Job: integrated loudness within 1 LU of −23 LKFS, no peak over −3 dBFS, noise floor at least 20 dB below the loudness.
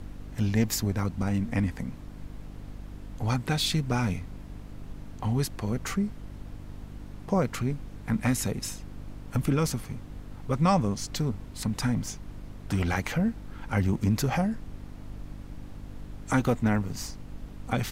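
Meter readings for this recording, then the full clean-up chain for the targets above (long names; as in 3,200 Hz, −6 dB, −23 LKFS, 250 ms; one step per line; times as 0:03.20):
mains hum 50 Hz; hum harmonics up to 300 Hz; level of the hum −44 dBFS; background noise floor −44 dBFS; target noise floor −49 dBFS; integrated loudness −29.0 LKFS; sample peak −11.5 dBFS; target loudness −23.0 LKFS
→ hum removal 50 Hz, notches 6
noise reduction from a noise print 6 dB
level +6 dB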